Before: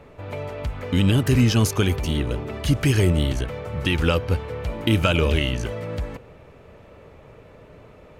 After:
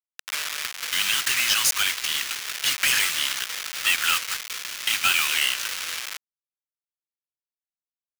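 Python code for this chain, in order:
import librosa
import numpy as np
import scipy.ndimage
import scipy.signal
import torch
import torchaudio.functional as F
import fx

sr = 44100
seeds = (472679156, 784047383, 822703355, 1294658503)

y = fx.delta_hold(x, sr, step_db=-27.0)
y = scipy.signal.sosfilt(scipy.signal.bessel(6, 2100.0, 'highpass', norm='mag', fs=sr, output='sos'), y)
y = fx.rider(y, sr, range_db=5, speed_s=2.0)
y = fx.leveller(y, sr, passes=3)
y = 10.0 ** (-16.5 / 20.0) * np.tanh(y / 10.0 ** (-16.5 / 20.0))
y = y * librosa.db_to_amplitude(2.0)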